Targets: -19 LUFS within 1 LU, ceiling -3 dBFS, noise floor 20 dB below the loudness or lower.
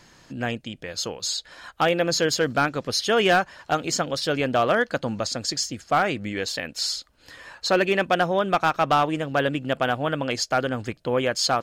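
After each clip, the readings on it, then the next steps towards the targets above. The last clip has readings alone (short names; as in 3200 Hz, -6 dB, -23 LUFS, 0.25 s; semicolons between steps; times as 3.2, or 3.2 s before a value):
clipped 0.4%; flat tops at -12.0 dBFS; loudness -24.0 LUFS; peak -12.0 dBFS; loudness target -19.0 LUFS
-> clip repair -12 dBFS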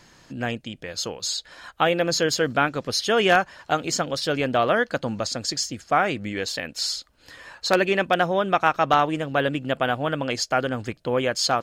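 clipped 0.0%; loudness -23.5 LUFS; peak -3.0 dBFS; loudness target -19.0 LUFS
-> gain +4.5 dB; limiter -3 dBFS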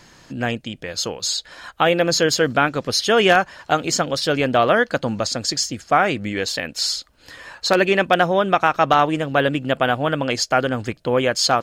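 loudness -19.5 LUFS; peak -3.0 dBFS; noise floor -53 dBFS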